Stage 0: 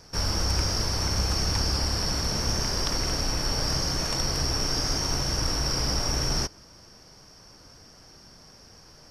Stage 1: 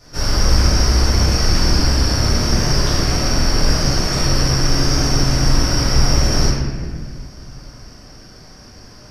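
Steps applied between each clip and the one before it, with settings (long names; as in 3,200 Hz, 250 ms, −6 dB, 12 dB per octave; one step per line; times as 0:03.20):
convolution reverb RT60 1.6 s, pre-delay 3 ms, DRR −11 dB
level −3 dB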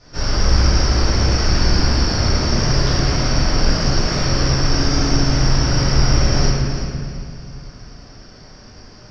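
low-pass filter 5,600 Hz 24 dB per octave
on a send: echo machine with several playback heads 111 ms, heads first and third, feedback 44%, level −10 dB
on the sum: level −1 dB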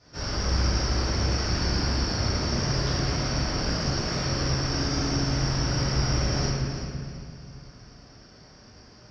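high-pass filter 51 Hz
level −8 dB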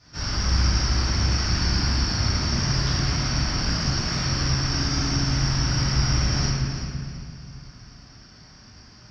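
parametric band 490 Hz −11 dB 1.2 octaves
level +4 dB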